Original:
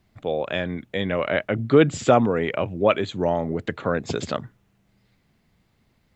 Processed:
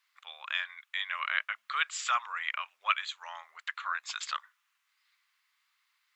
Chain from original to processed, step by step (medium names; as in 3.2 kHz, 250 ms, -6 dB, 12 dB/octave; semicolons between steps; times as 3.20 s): elliptic high-pass 1.1 kHz, stop band 70 dB; trim -1.5 dB